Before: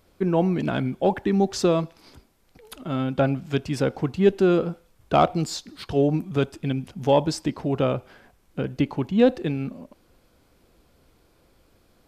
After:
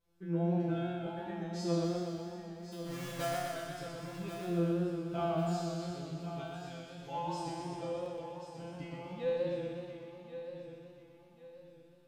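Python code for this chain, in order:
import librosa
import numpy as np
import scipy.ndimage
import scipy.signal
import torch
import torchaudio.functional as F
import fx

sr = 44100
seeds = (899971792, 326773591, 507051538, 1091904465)

p1 = fx.halfwave_hold(x, sr, at=(1.83, 3.34), fade=0.02)
p2 = fx.peak_eq(p1, sr, hz=76.0, db=14.0, octaves=0.77)
p3 = fx.comb_fb(p2, sr, f0_hz=170.0, decay_s=1.0, harmonics='all', damping=0.0, mix_pct=100)
p4 = p3 + fx.echo_feedback(p3, sr, ms=1087, feedback_pct=34, wet_db=-11, dry=0)
p5 = fx.buffer_glitch(p4, sr, at_s=(8.02,), block=256, repeats=6)
y = fx.echo_warbled(p5, sr, ms=123, feedback_pct=71, rate_hz=2.8, cents=94, wet_db=-4)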